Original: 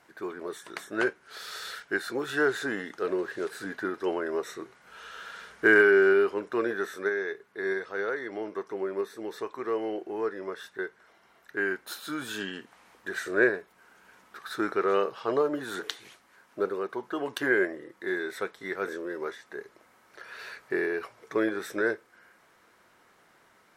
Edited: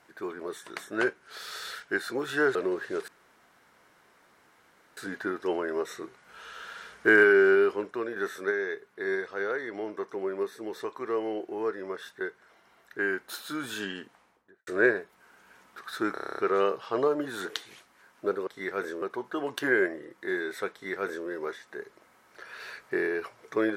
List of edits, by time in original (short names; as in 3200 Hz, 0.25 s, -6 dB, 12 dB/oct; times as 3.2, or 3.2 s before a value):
2.55–3.02 cut
3.55 insert room tone 1.89 s
6.41–6.74 fade out quadratic, to -6.5 dB
12.49–13.25 studio fade out
14.72 stutter 0.03 s, 9 plays
18.51–19.06 copy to 16.81